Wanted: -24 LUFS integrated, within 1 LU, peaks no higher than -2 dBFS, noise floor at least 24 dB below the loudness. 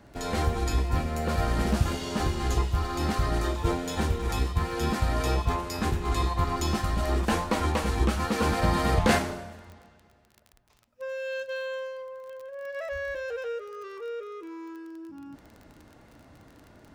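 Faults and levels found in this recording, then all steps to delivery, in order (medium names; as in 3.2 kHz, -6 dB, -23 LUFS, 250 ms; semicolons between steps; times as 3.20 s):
tick rate 23 per s; loudness -28.5 LUFS; peak level -9.5 dBFS; loudness target -24.0 LUFS
-> de-click; trim +4.5 dB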